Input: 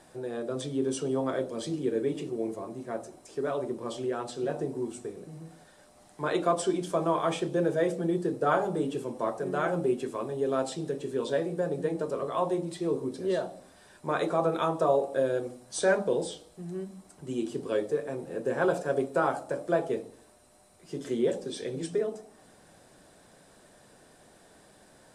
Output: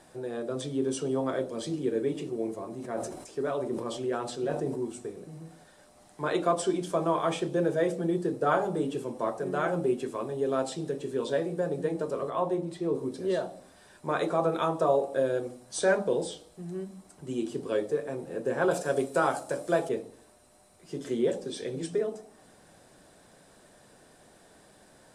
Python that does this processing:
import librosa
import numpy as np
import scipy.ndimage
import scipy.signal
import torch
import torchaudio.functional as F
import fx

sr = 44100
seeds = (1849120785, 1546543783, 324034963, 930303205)

y = fx.sustainer(x, sr, db_per_s=55.0, at=(2.67, 4.81))
y = fx.high_shelf(y, sr, hz=2800.0, db=-7.5, at=(12.3, 12.95))
y = fx.high_shelf(y, sr, hz=3100.0, db=10.0, at=(18.71, 19.89))